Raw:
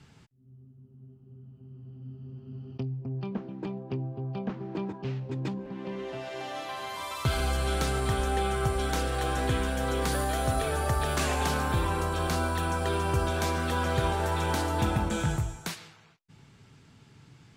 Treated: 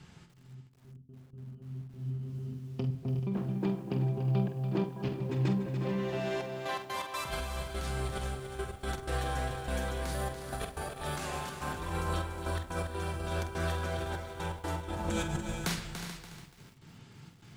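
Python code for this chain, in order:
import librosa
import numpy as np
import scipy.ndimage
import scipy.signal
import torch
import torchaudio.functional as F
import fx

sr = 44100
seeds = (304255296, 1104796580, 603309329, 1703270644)

y = fx.over_compress(x, sr, threshold_db=-31.0, ratio=-0.5)
y = fx.step_gate(y, sr, bpm=124, pattern='xxxxx..x.x.xxxx.', floor_db=-60.0, edge_ms=4.5)
y = fx.echo_multitap(y, sr, ms=(47, 364, 387, 433), db=(-10.0, -12.0, -18.0, -13.0))
y = fx.room_shoebox(y, sr, seeds[0], volume_m3=3400.0, walls='furnished', distance_m=0.92)
y = fx.echo_crushed(y, sr, ms=288, feedback_pct=35, bits=9, wet_db=-9.0)
y = F.gain(torch.from_numpy(y), -2.5).numpy()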